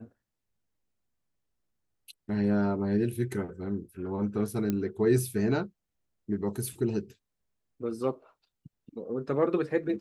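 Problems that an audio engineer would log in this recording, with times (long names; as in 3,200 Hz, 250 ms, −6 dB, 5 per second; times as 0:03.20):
0:04.70: click −16 dBFS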